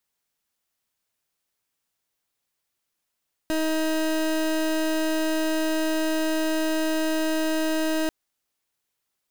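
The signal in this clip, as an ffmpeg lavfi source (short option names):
-f lavfi -i "aevalsrc='0.0631*(2*lt(mod(316*t,1),0.28)-1)':d=4.59:s=44100"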